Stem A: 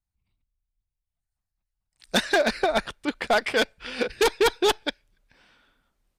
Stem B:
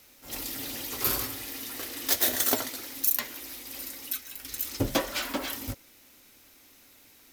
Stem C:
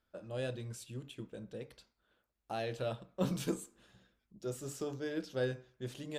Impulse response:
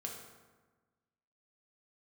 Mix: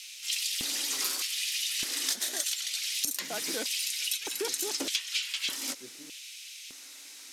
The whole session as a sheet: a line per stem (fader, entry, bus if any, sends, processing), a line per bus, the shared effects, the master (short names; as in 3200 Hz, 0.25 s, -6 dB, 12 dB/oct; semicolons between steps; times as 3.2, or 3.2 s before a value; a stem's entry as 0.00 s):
-14.5 dB, 0.00 s, no send, dry
+2.0 dB, 0.00 s, no send, weighting filter ITU-R 468
-11.5 dB, 0.00 s, no send, dry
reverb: off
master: LFO high-pass square 0.82 Hz 270–2700 Hz; compressor 12:1, threshold -28 dBFS, peak gain reduction 18 dB